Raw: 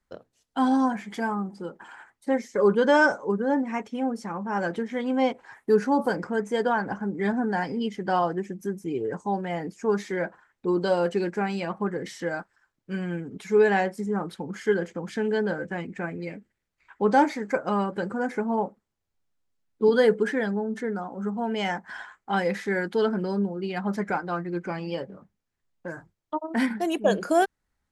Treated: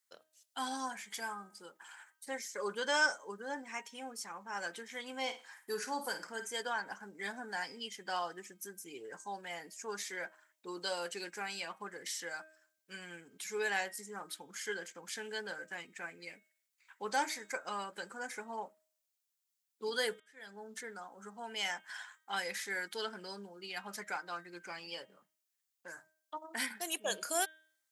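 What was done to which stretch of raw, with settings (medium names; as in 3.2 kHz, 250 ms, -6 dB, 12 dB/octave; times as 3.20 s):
5.21–6.47 s: flutter echo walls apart 9 m, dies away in 0.3 s
20.20–20.64 s: fade in quadratic
whole clip: differentiator; de-hum 314.4 Hz, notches 12; trim +5.5 dB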